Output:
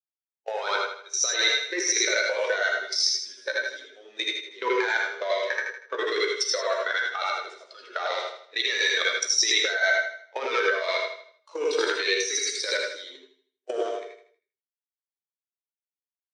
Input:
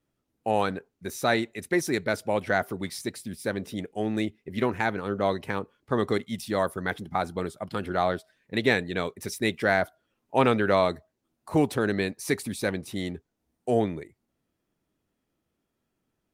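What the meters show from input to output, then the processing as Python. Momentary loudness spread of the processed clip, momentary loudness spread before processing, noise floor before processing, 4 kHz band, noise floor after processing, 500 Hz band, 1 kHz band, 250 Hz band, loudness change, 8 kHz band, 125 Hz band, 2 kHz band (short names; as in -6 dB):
12 LU, 10 LU, -80 dBFS, +12.0 dB, under -85 dBFS, -1.5 dB, -2.5 dB, -13.0 dB, +2.5 dB, +14.0 dB, under -40 dB, +6.0 dB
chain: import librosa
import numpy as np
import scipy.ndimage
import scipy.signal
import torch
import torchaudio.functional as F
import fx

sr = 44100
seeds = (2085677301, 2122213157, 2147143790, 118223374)

y = fx.spec_quant(x, sr, step_db=15)
y = fx.leveller(y, sr, passes=2)
y = fx.tilt_eq(y, sr, slope=4.0)
y = fx.level_steps(y, sr, step_db=22)
y = fx.doubler(y, sr, ms=15.0, db=-11)
y = fx.echo_feedback(y, sr, ms=79, feedback_pct=53, wet_db=-7.0)
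y = fx.over_compress(y, sr, threshold_db=-25.0, ratio=-0.5)
y = fx.cabinet(y, sr, low_hz=380.0, low_slope=24, high_hz=6700.0, hz=(750.0, 3700.0, 5700.0), db=(-8, 3, 7))
y = fx.rev_gated(y, sr, seeds[0], gate_ms=120, shape='rising', drr_db=1.0)
y = fx.spectral_expand(y, sr, expansion=1.5)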